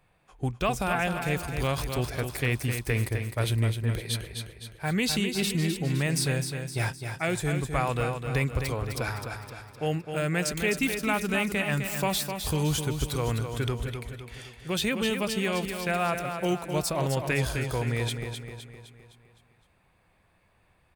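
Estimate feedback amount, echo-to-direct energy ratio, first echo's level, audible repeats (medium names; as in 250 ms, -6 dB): 49%, -6.0 dB, -7.0 dB, 5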